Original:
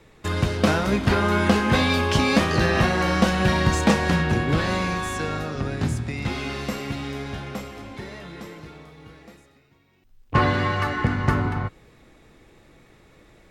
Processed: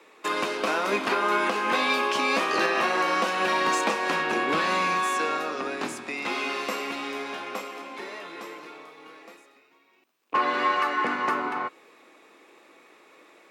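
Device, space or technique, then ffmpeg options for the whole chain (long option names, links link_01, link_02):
laptop speaker: -filter_complex "[0:a]highpass=frequency=300:width=0.5412,highpass=frequency=300:width=1.3066,equalizer=frequency=1100:width_type=o:width=0.55:gain=6.5,equalizer=frequency=2500:width_type=o:width=0.29:gain=6,alimiter=limit=-13.5dB:level=0:latency=1:release=343,asplit=3[link_01][link_02][link_03];[link_01]afade=type=out:start_time=4.53:duration=0.02[link_04];[link_02]asubboost=boost=4:cutoff=180,afade=type=in:start_time=4.53:duration=0.02,afade=type=out:start_time=5.03:duration=0.02[link_05];[link_03]afade=type=in:start_time=5.03:duration=0.02[link_06];[link_04][link_05][link_06]amix=inputs=3:normalize=0"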